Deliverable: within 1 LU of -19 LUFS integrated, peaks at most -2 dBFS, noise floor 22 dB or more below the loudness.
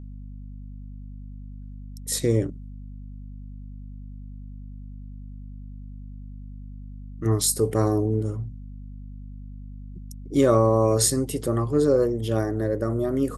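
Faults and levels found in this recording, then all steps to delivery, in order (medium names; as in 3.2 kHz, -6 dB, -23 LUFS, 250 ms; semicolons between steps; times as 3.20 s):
hum 50 Hz; highest harmonic 250 Hz; hum level -36 dBFS; loudness -23.0 LUFS; peak level -7.0 dBFS; loudness target -19.0 LUFS
-> de-hum 50 Hz, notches 5; trim +4 dB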